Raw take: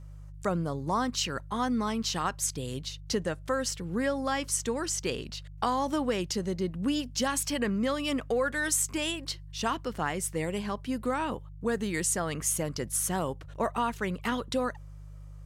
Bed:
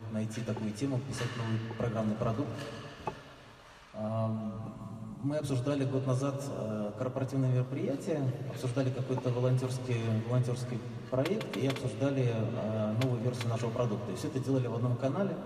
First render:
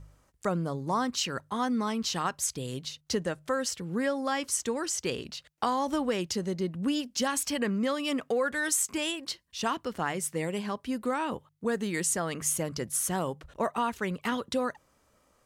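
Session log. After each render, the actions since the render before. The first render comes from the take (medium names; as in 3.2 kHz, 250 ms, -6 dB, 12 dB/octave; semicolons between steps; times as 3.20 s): de-hum 50 Hz, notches 3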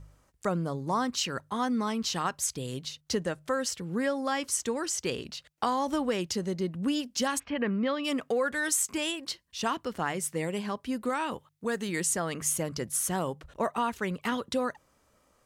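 7.38–8.03 s: low-pass 2.3 kHz -> 4.7 kHz 24 dB/octave; 11.09–11.89 s: tilt shelf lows -3 dB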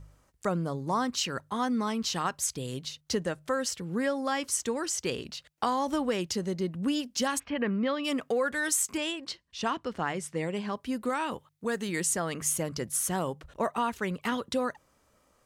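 8.97–10.73 s: distance through air 60 m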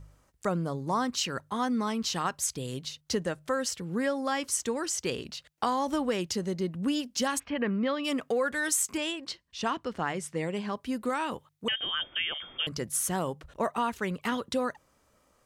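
11.68–12.67 s: frequency inversion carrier 3.4 kHz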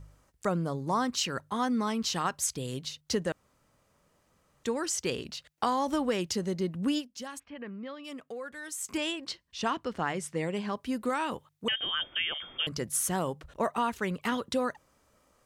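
3.32–4.64 s: room tone; 6.98–8.88 s: dip -12 dB, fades 0.38 s exponential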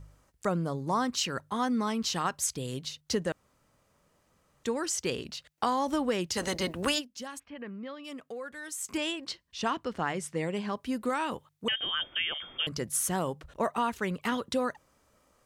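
6.35–6.98 s: spectral peaks clipped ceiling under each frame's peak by 22 dB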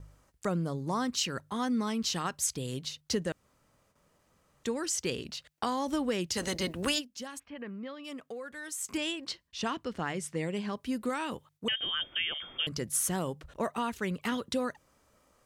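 gate with hold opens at -59 dBFS; dynamic bell 910 Hz, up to -5 dB, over -42 dBFS, Q 0.75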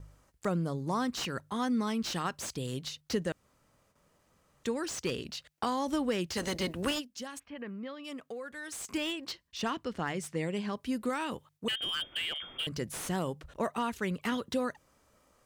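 slew-rate limiter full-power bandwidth 86 Hz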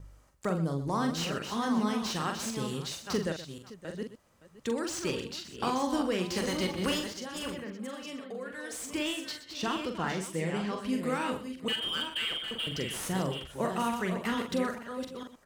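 chunks repeated in reverse 448 ms, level -7 dB; multi-tap echo 43/124/567 ms -5.5/-13.5/-17 dB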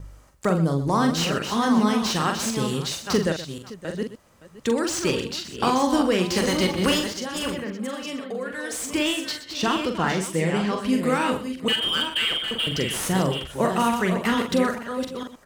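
trim +9 dB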